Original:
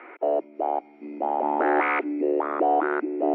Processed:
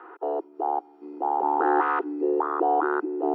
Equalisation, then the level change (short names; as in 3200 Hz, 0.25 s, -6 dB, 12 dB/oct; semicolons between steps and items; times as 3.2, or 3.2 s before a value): HPF 400 Hz 12 dB/oct; bell 510 Hz +3.5 dB 2.1 oct; fixed phaser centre 600 Hz, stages 6; +1.5 dB